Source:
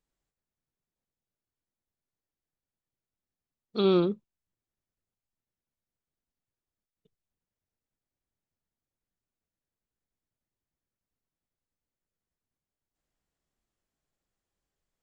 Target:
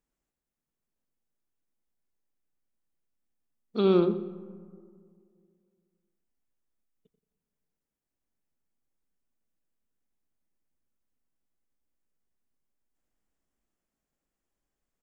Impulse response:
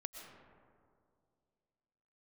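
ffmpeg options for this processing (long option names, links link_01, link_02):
-filter_complex "[0:a]equalizer=frequency=100:width_type=o:width=0.67:gain=-9,equalizer=frequency=250:width_type=o:width=0.67:gain=4,equalizer=frequency=4000:width_type=o:width=0.67:gain=-6,asplit=2[link_01][link_02];[link_02]adelay=88,lowpass=frequency=1400:poles=1,volume=-9.5dB,asplit=2[link_03][link_04];[link_04]adelay=88,lowpass=frequency=1400:poles=1,volume=0.37,asplit=2[link_05][link_06];[link_06]adelay=88,lowpass=frequency=1400:poles=1,volume=0.37,asplit=2[link_07][link_08];[link_08]adelay=88,lowpass=frequency=1400:poles=1,volume=0.37[link_09];[link_01][link_03][link_05][link_07][link_09]amix=inputs=5:normalize=0,asplit=2[link_10][link_11];[1:a]atrim=start_sample=2205,lowshelf=frequency=210:gain=11.5,adelay=122[link_12];[link_11][link_12]afir=irnorm=-1:irlink=0,volume=-15.5dB[link_13];[link_10][link_13]amix=inputs=2:normalize=0"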